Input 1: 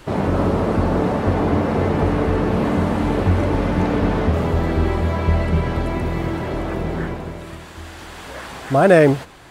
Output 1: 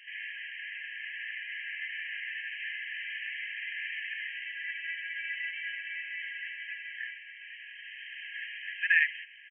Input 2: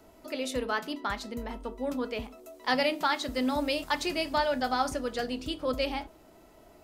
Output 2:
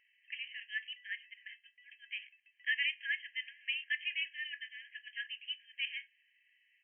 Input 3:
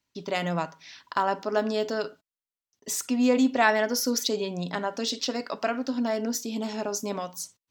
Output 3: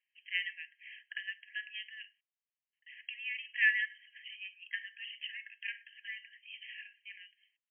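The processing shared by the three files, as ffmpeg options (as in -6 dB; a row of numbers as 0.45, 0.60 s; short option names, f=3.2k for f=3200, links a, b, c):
-af "aresample=8000,aresample=44100,afftfilt=real='re*eq(mod(floor(b*sr/1024/1600),2),1)':imag='im*eq(mod(floor(b*sr/1024/1600),2),1)':win_size=1024:overlap=0.75"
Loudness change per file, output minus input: -15.5, -7.5, -10.0 LU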